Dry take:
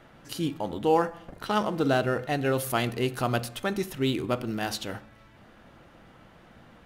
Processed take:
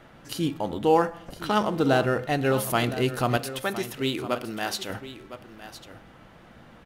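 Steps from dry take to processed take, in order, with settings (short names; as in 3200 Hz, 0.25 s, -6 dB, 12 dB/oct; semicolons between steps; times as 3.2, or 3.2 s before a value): 3.37–4.9 low shelf 240 Hz -11.5 dB; on a send: echo 1.01 s -13.5 dB; on the sum: gain +2.5 dB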